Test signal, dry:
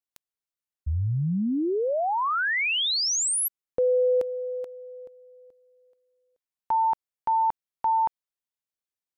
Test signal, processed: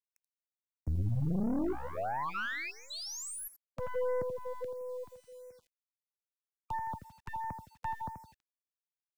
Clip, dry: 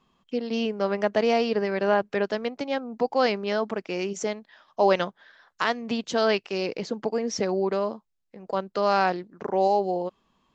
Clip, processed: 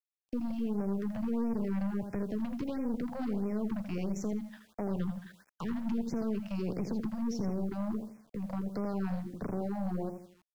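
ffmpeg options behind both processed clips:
ffmpeg -i in.wav -filter_complex "[0:a]highpass=55,agate=range=-17dB:threshold=-55dB:ratio=16:release=61:detection=peak,bass=frequency=250:gain=14,treble=frequency=4000:gain=-3,acrossover=split=280[link_01][link_02];[link_02]acompressor=threshold=-34dB:ratio=5:attack=0.48:release=368:knee=2.83:detection=peak[link_03];[link_01][link_03]amix=inputs=2:normalize=0,acrossover=split=110|1000|1300[link_04][link_05][link_06][link_07];[link_07]alimiter=level_in=14dB:limit=-24dB:level=0:latency=1,volume=-14dB[link_08];[link_04][link_05][link_06][link_08]amix=inputs=4:normalize=0,acompressor=threshold=-27dB:ratio=10:attack=0.23:release=121:knee=1:detection=peak,asplit=2[link_09][link_10];[link_10]adelay=82,lowpass=frequency=4400:poles=1,volume=-7.5dB,asplit=2[link_11][link_12];[link_12]adelay=82,lowpass=frequency=4400:poles=1,volume=0.39,asplit=2[link_13][link_14];[link_14]adelay=82,lowpass=frequency=4400:poles=1,volume=0.39,asplit=2[link_15][link_16];[link_16]adelay=82,lowpass=frequency=4400:poles=1,volume=0.39[link_17];[link_09][link_11][link_13][link_15][link_17]amix=inputs=5:normalize=0,aeval=exprs='(tanh(35.5*val(0)+0.65)-tanh(0.65))/35.5':channel_layout=same,acrusher=bits=10:mix=0:aa=0.000001,afftfilt=real='re*(1-between(b*sr/1024,340*pow(3700/340,0.5+0.5*sin(2*PI*1.5*pts/sr))/1.41,340*pow(3700/340,0.5+0.5*sin(2*PI*1.5*pts/sr))*1.41))':imag='im*(1-between(b*sr/1024,340*pow(3700/340,0.5+0.5*sin(2*PI*1.5*pts/sr))/1.41,340*pow(3700/340,0.5+0.5*sin(2*PI*1.5*pts/sr))*1.41))':win_size=1024:overlap=0.75,volume=2.5dB" out.wav

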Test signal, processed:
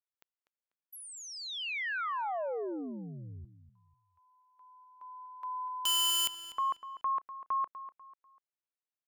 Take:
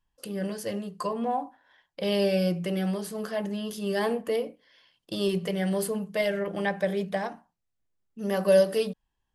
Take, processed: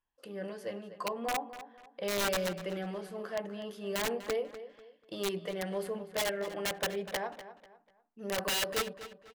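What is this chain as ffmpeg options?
ffmpeg -i in.wav -filter_complex "[0:a]bass=frequency=250:gain=-11,treble=frequency=4000:gain=-13,aeval=exprs='(mod(11.2*val(0)+1,2)-1)/11.2':channel_layout=same,asplit=2[link_01][link_02];[link_02]adelay=246,lowpass=frequency=4800:poles=1,volume=-13dB,asplit=2[link_03][link_04];[link_04]adelay=246,lowpass=frequency=4800:poles=1,volume=0.33,asplit=2[link_05][link_06];[link_06]adelay=246,lowpass=frequency=4800:poles=1,volume=0.33[link_07];[link_01][link_03][link_05][link_07]amix=inputs=4:normalize=0,volume=-4.5dB" out.wav

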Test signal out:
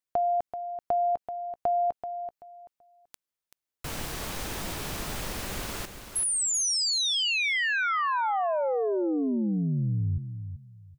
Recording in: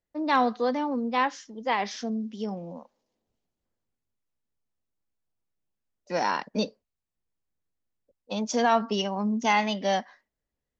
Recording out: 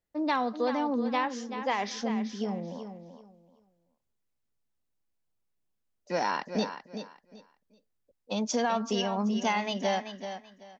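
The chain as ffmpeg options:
ffmpeg -i in.wav -filter_complex "[0:a]acompressor=threshold=-24dB:ratio=6,asplit=2[link_01][link_02];[link_02]aecho=0:1:383|766|1149:0.335|0.077|0.0177[link_03];[link_01][link_03]amix=inputs=2:normalize=0" out.wav

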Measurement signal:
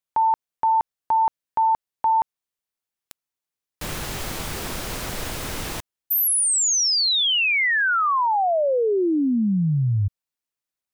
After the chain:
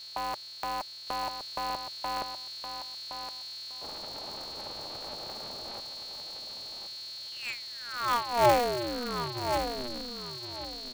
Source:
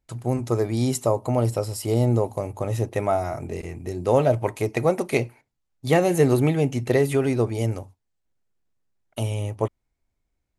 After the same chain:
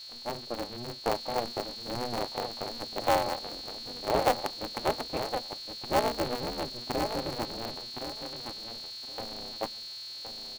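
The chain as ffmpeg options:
ffmpeg -i in.wav -filter_complex "[0:a]asplit=3[link_01][link_02][link_03];[link_01]bandpass=frequency=730:width_type=q:width=8,volume=0dB[link_04];[link_02]bandpass=frequency=1090:width_type=q:width=8,volume=-6dB[link_05];[link_03]bandpass=frequency=2440:width_type=q:width=8,volume=-9dB[link_06];[link_04][link_05][link_06]amix=inputs=3:normalize=0,lowshelf=frequency=480:gain=5.5,bandreject=frequency=50:width_type=h:width=6,bandreject=frequency=100:width_type=h:width=6,bandreject=frequency=150:width_type=h:width=6,bandreject=frequency=200:width_type=h:width=6,bandreject=frequency=250:width_type=h:width=6,adynamicsmooth=sensitivity=2:basefreq=790,aeval=exprs='val(0)+0.00794*sin(2*PI*4300*n/s)':channel_layout=same,bass=frequency=250:gain=5,treble=frequency=4000:gain=0,asplit=2[link_07][link_08];[link_08]aecho=0:1:1067|2134|3201:0.398|0.0796|0.0159[link_09];[link_07][link_09]amix=inputs=2:normalize=0,aeval=exprs='val(0)*sgn(sin(2*PI*120*n/s))':channel_layout=same" out.wav

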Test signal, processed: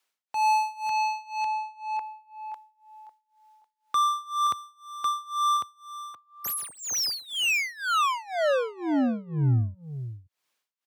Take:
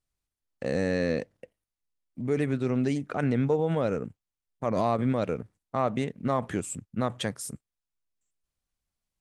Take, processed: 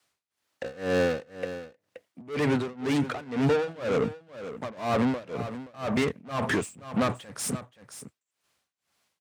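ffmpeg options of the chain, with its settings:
ffmpeg -i in.wav -filter_complex "[0:a]asplit=2[link_01][link_02];[link_02]highpass=frequency=720:poles=1,volume=31dB,asoftclip=type=tanh:threshold=-13dB[link_03];[link_01][link_03]amix=inputs=2:normalize=0,lowpass=frequency=4000:poles=1,volume=-6dB,asplit=2[link_04][link_05];[link_05]aecho=0:1:525:0.237[link_06];[link_04][link_06]amix=inputs=2:normalize=0,tremolo=f=2:d=0.94,adynamicequalizer=threshold=0.00562:dfrequency=100:dqfactor=1.1:tfrequency=100:tqfactor=1.1:attack=5:release=100:ratio=0.375:range=3:mode=boostabove:tftype=bell,highpass=frequency=68:width=0.5412,highpass=frequency=68:width=1.3066,volume=-3.5dB" out.wav

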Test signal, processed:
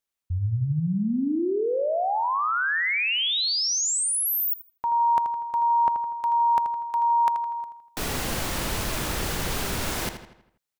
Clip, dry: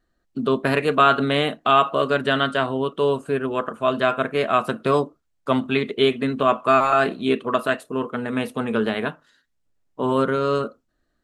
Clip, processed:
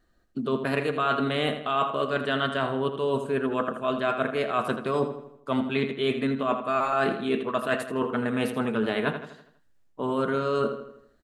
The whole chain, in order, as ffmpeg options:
ffmpeg -i in.wav -filter_complex "[0:a]areverse,acompressor=threshold=-27dB:ratio=6,areverse,asplit=2[link_01][link_02];[link_02]adelay=81,lowpass=frequency=4900:poles=1,volume=-9dB,asplit=2[link_03][link_04];[link_04]adelay=81,lowpass=frequency=4900:poles=1,volume=0.49,asplit=2[link_05][link_06];[link_06]adelay=81,lowpass=frequency=4900:poles=1,volume=0.49,asplit=2[link_07][link_08];[link_08]adelay=81,lowpass=frequency=4900:poles=1,volume=0.49,asplit=2[link_09][link_10];[link_10]adelay=81,lowpass=frequency=4900:poles=1,volume=0.49,asplit=2[link_11][link_12];[link_12]adelay=81,lowpass=frequency=4900:poles=1,volume=0.49[link_13];[link_01][link_03][link_05][link_07][link_09][link_11][link_13]amix=inputs=7:normalize=0,volume=3.5dB" out.wav

